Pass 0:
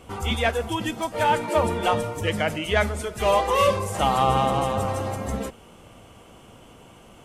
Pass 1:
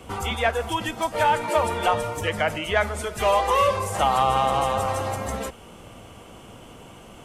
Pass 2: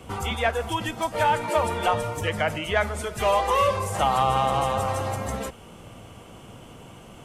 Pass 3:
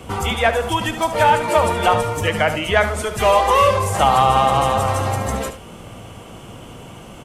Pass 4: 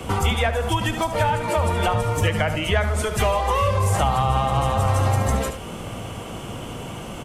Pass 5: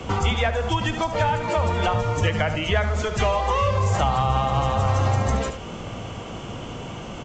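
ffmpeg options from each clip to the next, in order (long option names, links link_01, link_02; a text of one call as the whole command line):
ffmpeg -i in.wav -filter_complex "[0:a]acrossover=split=87|530|2000[link_01][link_02][link_03][link_04];[link_01]acompressor=threshold=-40dB:ratio=4[link_05];[link_02]acompressor=threshold=-39dB:ratio=4[link_06];[link_03]acompressor=threshold=-21dB:ratio=4[link_07];[link_04]acompressor=threshold=-37dB:ratio=4[link_08];[link_05][link_06][link_07][link_08]amix=inputs=4:normalize=0,volume=4dB" out.wav
ffmpeg -i in.wav -af "equalizer=frequency=130:width_type=o:width=1.1:gain=4.5,volume=-1.5dB" out.wav
ffmpeg -i in.wav -af "aecho=1:1:73:0.282,volume=7dB" out.wav
ffmpeg -i in.wav -filter_complex "[0:a]acrossover=split=150[link_01][link_02];[link_02]acompressor=threshold=-28dB:ratio=3[link_03];[link_01][link_03]amix=inputs=2:normalize=0,volume=4.5dB" out.wav
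ffmpeg -i in.wav -af "volume=-1dB" -ar 16000 -c:a pcm_mulaw out.wav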